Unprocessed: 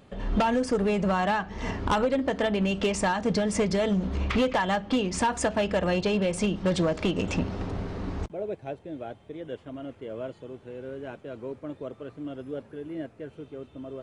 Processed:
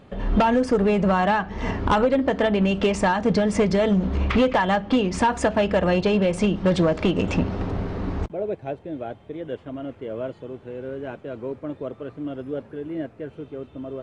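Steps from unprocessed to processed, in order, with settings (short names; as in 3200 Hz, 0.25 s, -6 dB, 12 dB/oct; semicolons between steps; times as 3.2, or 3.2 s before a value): high shelf 5100 Hz -11.5 dB; gain +5.5 dB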